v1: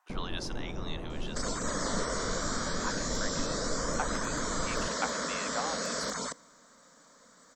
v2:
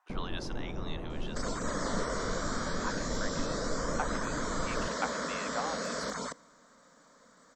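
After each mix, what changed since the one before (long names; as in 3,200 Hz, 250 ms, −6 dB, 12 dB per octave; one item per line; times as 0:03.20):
master: add high-shelf EQ 4,200 Hz −8 dB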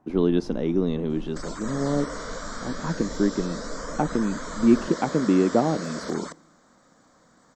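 speech: remove high-pass filter 1,000 Hz 24 dB per octave
first sound: add parametric band 250 Hz −13.5 dB 2.4 octaves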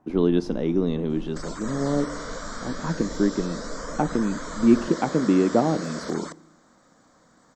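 speech: send +6.5 dB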